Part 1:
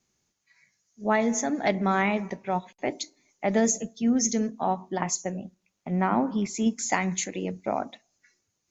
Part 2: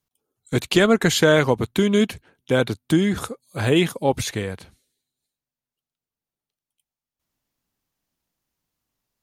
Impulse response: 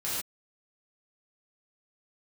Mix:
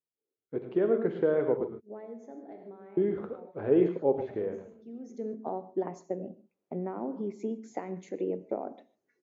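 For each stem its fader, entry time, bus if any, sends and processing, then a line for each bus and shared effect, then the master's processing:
+2.5 dB, 0.85 s, send -21.5 dB, no echo send, compressor 12:1, threshold -28 dBFS, peak gain reduction 11.5 dB; auto duck -17 dB, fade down 0.95 s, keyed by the second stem
-8.0 dB, 0.00 s, muted 1.7–2.97, send -11 dB, echo send -8.5 dB, Chebyshev low-pass 2000 Hz, order 2; AGC gain up to 7 dB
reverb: on, pre-delay 3 ms
echo: echo 0.108 s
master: vocal rider within 3 dB 2 s; band-pass 410 Hz, Q 2.3

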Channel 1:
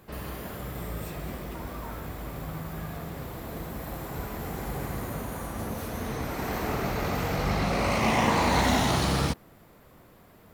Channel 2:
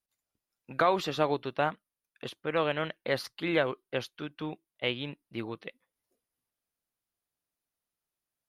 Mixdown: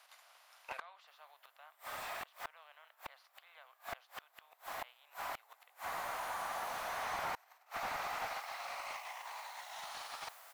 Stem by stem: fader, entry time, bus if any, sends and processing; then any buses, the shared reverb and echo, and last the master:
-1.0 dB, 0.95 s, no send, negative-ratio compressor -31 dBFS, ratio -0.5; requantised 10-bit, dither triangular
+1.5 dB, 0.00 s, no send, per-bin compression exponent 0.6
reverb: off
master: steep high-pass 700 Hz 36 dB/oct; flipped gate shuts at -24 dBFS, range -32 dB; slew limiter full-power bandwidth 23 Hz

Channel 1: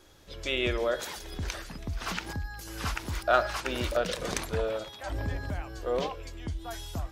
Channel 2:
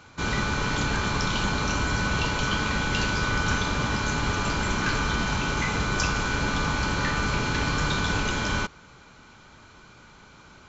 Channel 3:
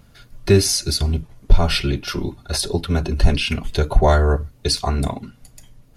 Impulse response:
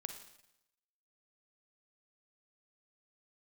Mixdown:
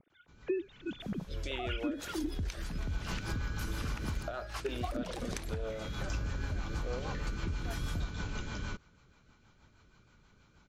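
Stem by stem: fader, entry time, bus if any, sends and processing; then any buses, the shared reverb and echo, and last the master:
0.0 dB, 1.00 s, no send, compressor 5:1, threshold -34 dBFS, peak gain reduction 15 dB
-14.0 dB, 0.10 s, send -23.5 dB, auto duck -24 dB, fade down 0.20 s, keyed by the third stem
-14.5 dB, 0.00 s, muted 2.42–4.41, no send, sine-wave speech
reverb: on, RT60 0.85 s, pre-delay 38 ms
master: low shelf 140 Hz +9 dB; rotary speaker horn 6.3 Hz; compressor 6:1, threshold -31 dBFS, peak gain reduction 12.5 dB

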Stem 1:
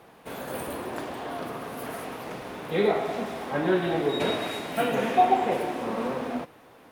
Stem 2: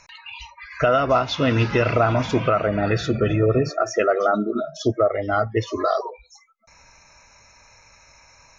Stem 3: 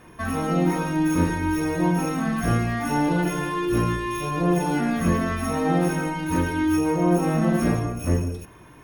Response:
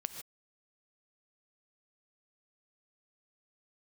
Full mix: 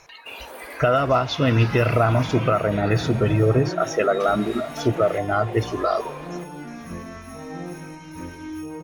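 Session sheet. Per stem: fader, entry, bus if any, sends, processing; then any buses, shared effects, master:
-4.5 dB, 0.00 s, no send, HPF 390 Hz 12 dB/oct; compressor, threshold -27 dBFS, peak gain reduction 11.5 dB
-1.0 dB, 0.00 s, no send, bell 130 Hz +5 dB 0.77 oct
-9.0 dB, 1.85 s, no send, resonator 51 Hz, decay 0.25 s, harmonics all, mix 60%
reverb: off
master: dry

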